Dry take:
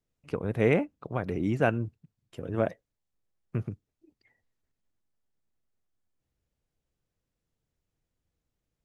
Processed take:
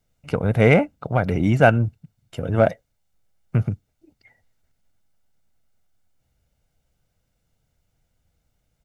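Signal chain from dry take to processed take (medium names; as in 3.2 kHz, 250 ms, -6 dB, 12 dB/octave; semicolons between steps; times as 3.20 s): comb 1.4 ms, depth 45%; in parallel at -11 dB: saturation -28 dBFS, distortion -6 dB; on the sum: trim +8.5 dB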